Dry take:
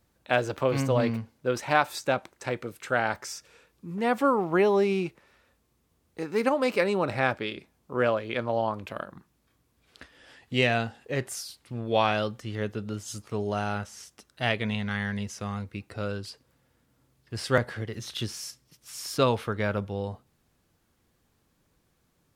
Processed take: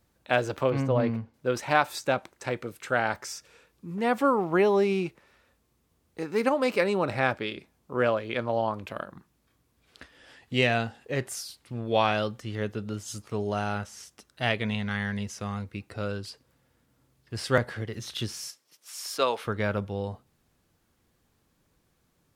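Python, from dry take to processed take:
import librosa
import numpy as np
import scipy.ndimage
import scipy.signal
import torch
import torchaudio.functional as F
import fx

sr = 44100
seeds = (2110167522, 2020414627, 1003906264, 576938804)

y = fx.lowpass(x, sr, hz=1600.0, slope=6, at=(0.7, 1.34))
y = fx.highpass(y, sr, hz=470.0, slope=12, at=(18.48, 19.45))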